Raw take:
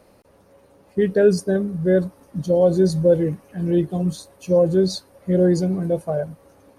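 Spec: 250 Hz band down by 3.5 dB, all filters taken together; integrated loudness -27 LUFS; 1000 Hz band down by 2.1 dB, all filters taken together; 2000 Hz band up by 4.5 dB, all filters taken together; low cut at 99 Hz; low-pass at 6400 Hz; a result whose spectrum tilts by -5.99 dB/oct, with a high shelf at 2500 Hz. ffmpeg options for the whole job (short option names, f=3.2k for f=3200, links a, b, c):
-af "highpass=99,lowpass=6.4k,equalizer=f=250:t=o:g=-6,equalizer=f=1k:t=o:g=-5,equalizer=f=2k:t=o:g=6,highshelf=f=2.5k:g=5.5,volume=-4.5dB"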